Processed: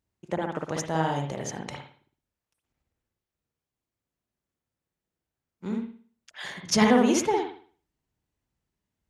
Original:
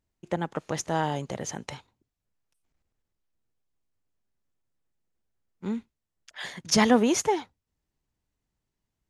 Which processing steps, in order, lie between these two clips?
high-pass filter 41 Hz
on a send: convolution reverb, pre-delay 56 ms, DRR 1.5 dB
on the sum: level −1.5 dB

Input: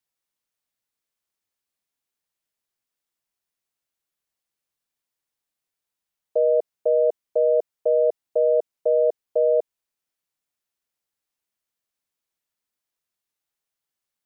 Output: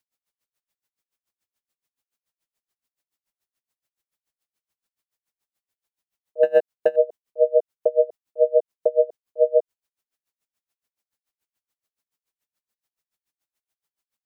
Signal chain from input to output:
0:06.43–0:06.96: leveller curve on the samples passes 1
tremolo with a sine in dB 7 Hz, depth 29 dB
level +6 dB

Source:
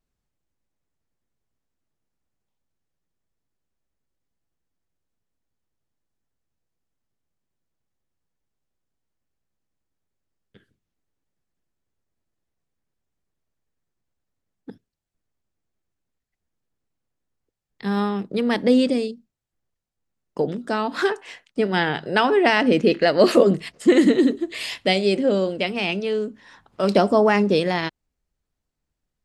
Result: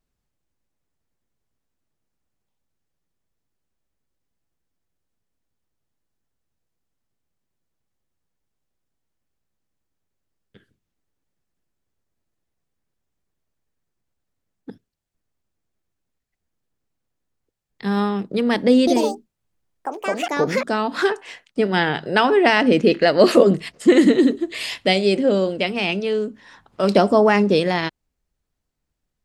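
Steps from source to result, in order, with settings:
0:18.78–0:21.13: delay with pitch and tempo change per echo 91 ms, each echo +5 semitones, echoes 2
level +2 dB

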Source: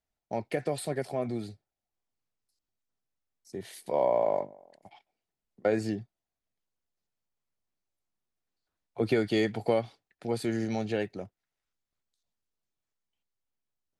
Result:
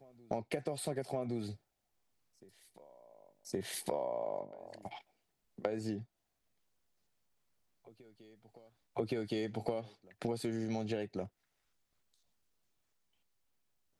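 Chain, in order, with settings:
dynamic equaliser 1,800 Hz, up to −5 dB, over −46 dBFS, Q 1.5
downward compressor 12 to 1, threshold −40 dBFS, peak gain reduction 19.5 dB
on a send: backwards echo 1,118 ms −23 dB
on the sum: level +7 dB

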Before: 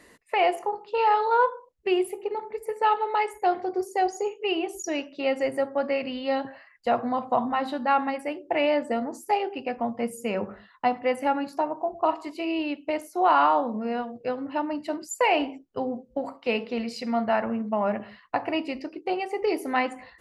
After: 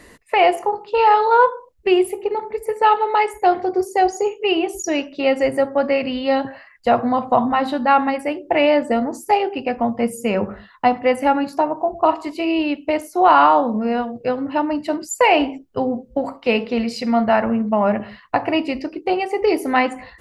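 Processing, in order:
low-shelf EQ 100 Hz +11 dB
level +7.5 dB

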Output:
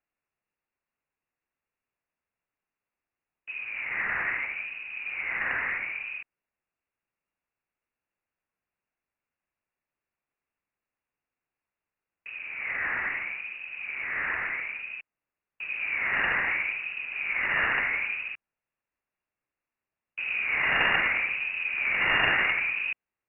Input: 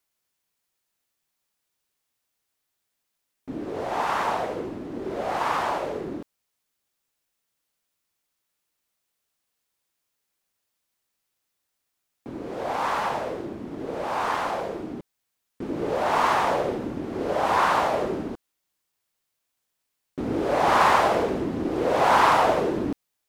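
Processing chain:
wavefolder on the positive side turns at −18 dBFS
voice inversion scrambler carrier 2,800 Hz
level −4 dB

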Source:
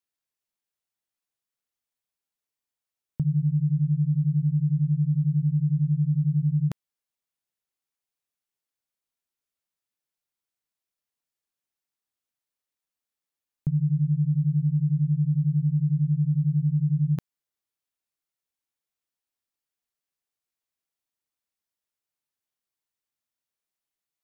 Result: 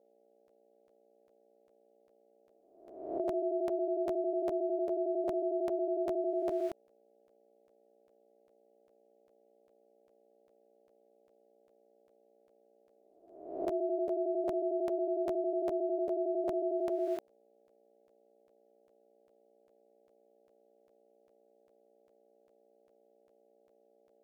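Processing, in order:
peak hold with a rise ahead of every peak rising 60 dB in 0.84 s
mains hum 60 Hz, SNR 30 dB
ring modulation 510 Hz
regular buffer underruns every 0.40 s, samples 512, repeat, from 0:00.47
level −8 dB

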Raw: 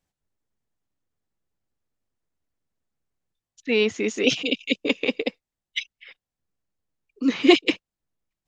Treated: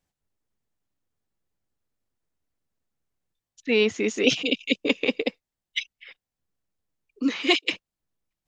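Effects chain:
0:07.27–0:07.71: high-pass filter 660 Hz → 1,400 Hz 6 dB per octave

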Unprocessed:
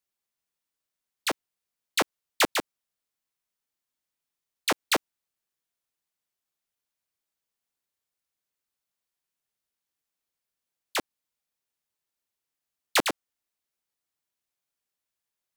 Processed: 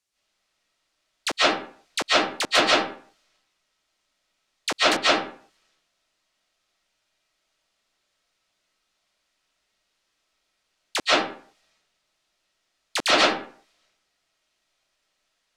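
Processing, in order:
high-shelf EQ 4,400 Hz +10 dB
brickwall limiter −16.5 dBFS, peak gain reduction 12.5 dB
low-pass filter 6,500 Hz 12 dB per octave
transient designer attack 0 dB, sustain +8 dB
convolution reverb RT60 0.50 s, pre-delay 105 ms, DRR −11 dB
level +5 dB

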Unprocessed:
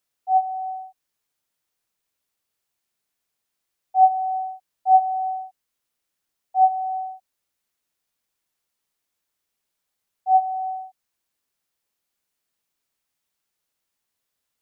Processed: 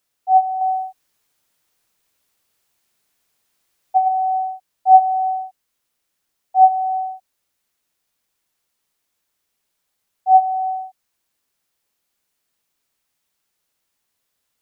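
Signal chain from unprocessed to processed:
0:00.61–0:04.08: compressor whose output falls as the input rises −20 dBFS, ratio −1
level +5.5 dB

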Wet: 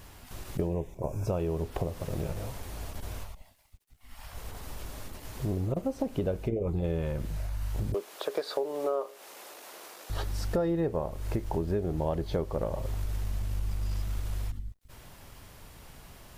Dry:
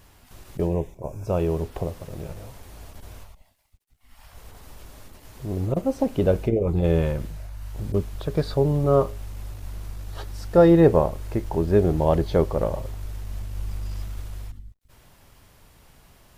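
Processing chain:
0:07.94–0:10.10: high-pass filter 390 Hz 24 dB per octave
downward compressor 6 to 1, threshold −31 dBFS, peak gain reduction 19 dB
level +3.5 dB

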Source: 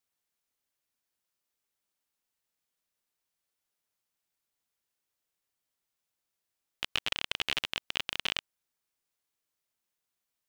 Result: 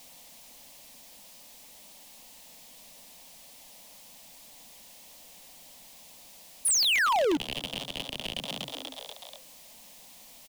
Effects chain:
high-shelf EQ 5,300 Hz −6 dB
echo with shifted repeats 242 ms, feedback 45%, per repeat +130 Hz, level −16 dB
reversed playback
downward compressor, threshold −37 dBFS, peak gain reduction 11 dB
reversed playback
phaser with its sweep stopped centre 380 Hz, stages 6
sound drawn into the spectrogram fall, 0:06.65–0:07.37, 270–11,000 Hz −33 dBFS
power curve on the samples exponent 0.5
in parallel at 0 dB: brickwall limiter −30 dBFS, peak gain reduction 7 dB

